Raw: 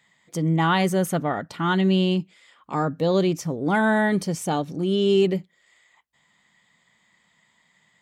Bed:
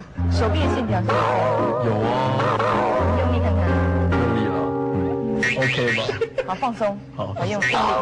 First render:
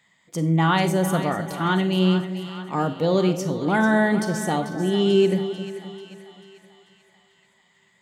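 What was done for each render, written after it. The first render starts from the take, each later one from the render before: split-band echo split 730 Hz, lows 0.261 s, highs 0.441 s, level -11 dB; Schroeder reverb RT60 0.39 s, combs from 33 ms, DRR 10.5 dB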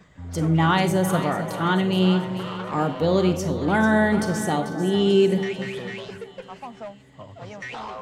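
add bed -15 dB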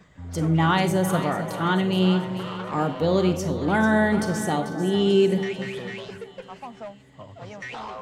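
gain -1 dB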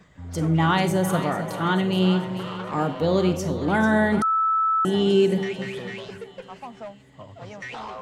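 4.22–4.85 bleep 1310 Hz -18 dBFS

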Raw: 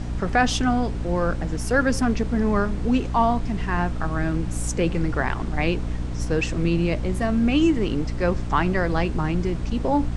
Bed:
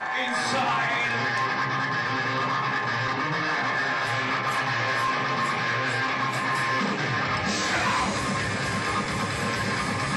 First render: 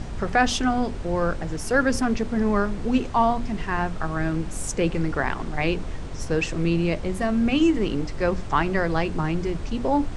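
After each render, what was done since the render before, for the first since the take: notches 60/120/180/240/300 Hz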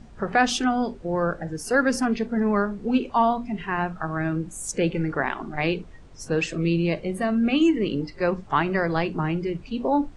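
noise print and reduce 15 dB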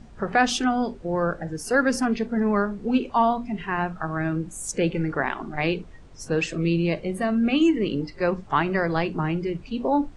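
nothing audible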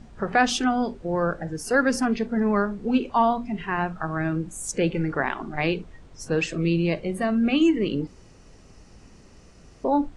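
8.07–9.84 room tone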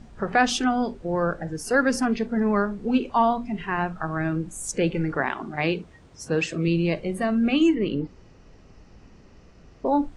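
5.17–6.68 HPF 64 Hz; 7.74–9.86 air absorption 130 m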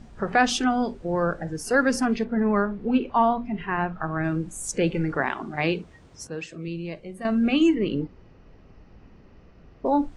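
2.24–4.24 LPF 3100 Hz; 6.27–7.25 gain -10 dB; 8.04–9.86 air absorption 190 m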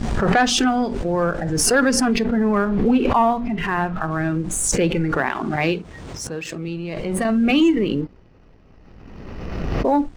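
sample leveller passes 1; backwards sustainer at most 28 dB/s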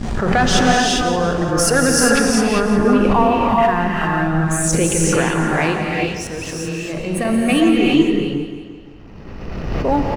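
feedback echo 0.174 s, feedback 53%, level -11.5 dB; non-linear reverb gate 0.43 s rising, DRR -1.5 dB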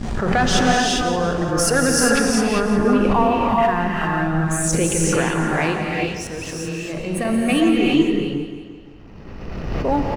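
gain -2.5 dB

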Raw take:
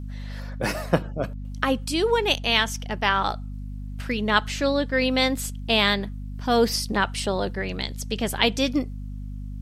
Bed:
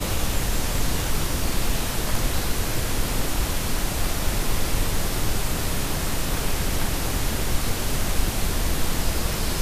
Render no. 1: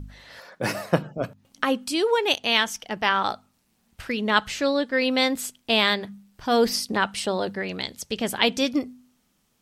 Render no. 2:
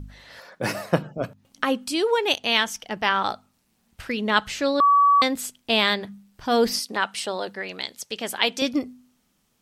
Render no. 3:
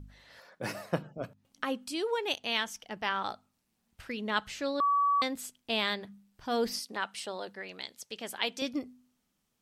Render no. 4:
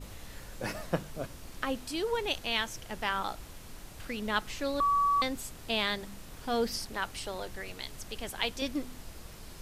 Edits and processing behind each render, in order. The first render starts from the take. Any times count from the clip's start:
de-hum 50 Hz, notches 5
4.8–5.22 bleep 1140 Hz -13 dBFS; 6.79–8.62 HPF 530 Hz 6 dB/oct
gain -10 dB
add bed -22.5 dB

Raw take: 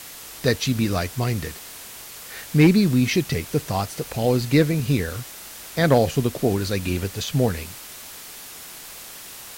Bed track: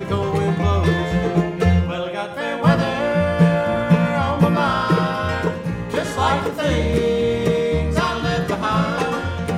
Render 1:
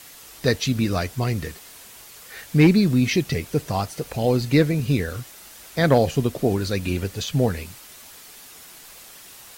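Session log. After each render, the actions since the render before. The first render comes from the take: denoiser 6 dB, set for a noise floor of -40 dBFS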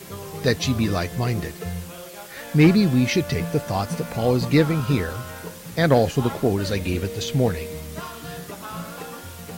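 add bed track -15 dB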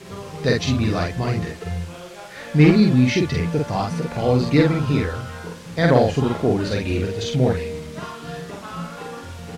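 air absorption 65 m; doubler 47 ms -2 dB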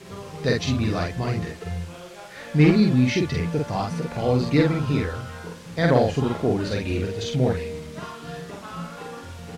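gain -3 dB

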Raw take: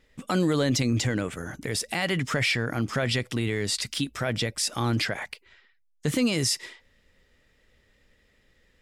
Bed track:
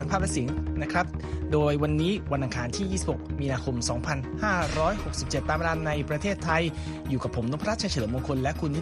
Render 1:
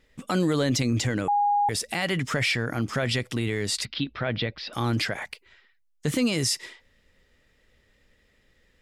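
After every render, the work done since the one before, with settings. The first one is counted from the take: 1.28–1.69 bleep 820 Hz -19 dBFS; 3.85–4.73 steep low-pass 4400 Hz 48 dB/oct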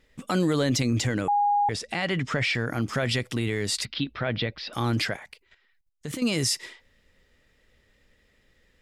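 1.63–2.55 air absorption 80 m; 5.16–6.27 level quantiser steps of 11 dB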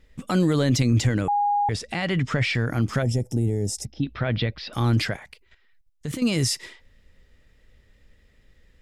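low shelf 150 Hz +11 dB; 3.02–4.03 spectral gain 900–5000 Hz -21 dB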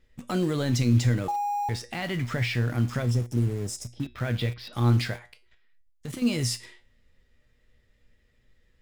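resonator 120 Hz, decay 0.31 s, harmonics all, mix 70%; in parallel at -11 dB: bit-crush 6-bit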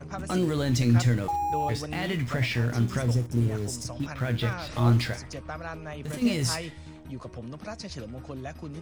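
add bed track -10.5 dB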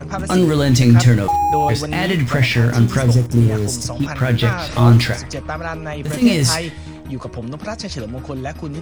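gain +11.5 dB; limiter -2 dBFS, peak gain reduction 2.5 dB

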